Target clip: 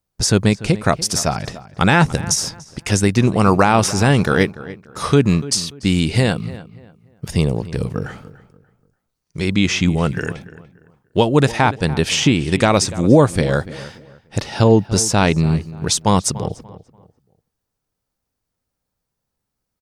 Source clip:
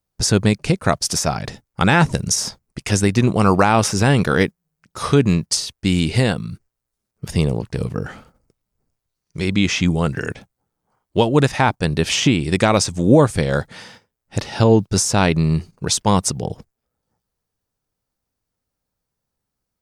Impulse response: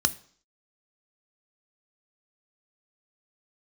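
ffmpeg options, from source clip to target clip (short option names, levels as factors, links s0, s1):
-filter_complex "[0:a]asplit=2[s0][s1];[s1]adelay=291,lowpass=f=2500:p=1,volume=0.15,asplit=2[s2][s3];[s3]adelay=291,lowpass=f=2500:p=1,volume=0.3,asplit=2[s4][s5];[s5]adelay=291,lowpass=f=2500:p=1,volume=0.3[s6];[s0][s2][s4][s6]amix=inputs=4:normalize=0,volume=1.12"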